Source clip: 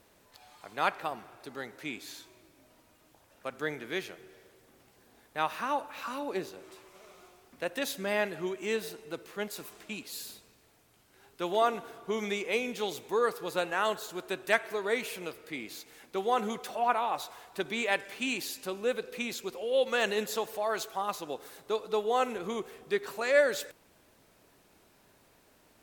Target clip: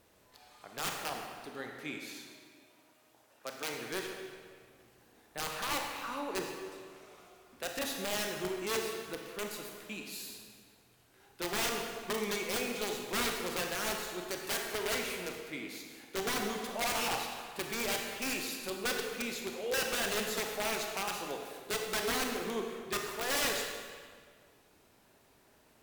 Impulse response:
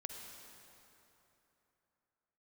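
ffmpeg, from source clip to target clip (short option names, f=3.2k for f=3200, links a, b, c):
-filter_complex "[0:a]aeval=exprs='(mod(16.8*val(0)+1,2)-1)/16.8':c=same,asettb=1/sr,asplit=3[a][b][c];[a]atrim=end=1.984[d];[b]atrim=start=1.98:end=3.74,asetpts=PTS-STARTPTS,afade=t=in:d=0.004:c=qsin,afade=t=out:st=1.756:d=0.004:c=qsin,highpass=f=300:p=1[e];[c]atrim=start=3.736[f];[d][e]acrossfade=d=0.004:c1=hsin:c2=qsin[g];[g][f]acrossfade=d=0.004:c1=qsin:c2=hsin[h];[1:a]atrim=start_sample=2205,asetrate=83790,aresample=44100[i];[h][i]afir=irnorm=-1:irlink=0,volume=6.5dB"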